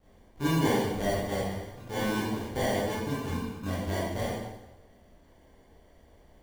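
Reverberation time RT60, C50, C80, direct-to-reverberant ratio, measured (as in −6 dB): 0.95 s, −1.0 dB, 2.0 dB, −9.0 dB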